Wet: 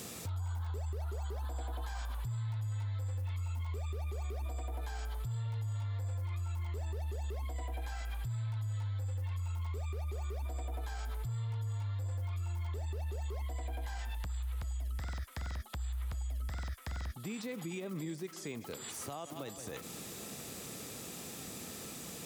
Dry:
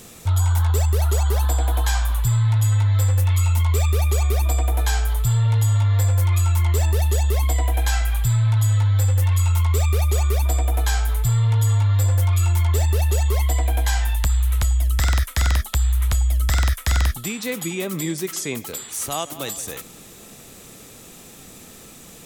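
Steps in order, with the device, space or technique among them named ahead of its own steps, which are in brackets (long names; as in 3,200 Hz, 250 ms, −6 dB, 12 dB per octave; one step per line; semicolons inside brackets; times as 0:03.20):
broadcast voice chain (high-pass filter 77 Hz 12 dB per octave; de-essing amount 85%; downward compressor 3 to 1, threshold −38 dBFS, peak gain reduction 15 dB; parametric band 4,800 Hz +4 dB 0.25 octaves; brickwall limiter −30.5 dBFS, peak gain reduction 4.5 dB)
level −1.5 dB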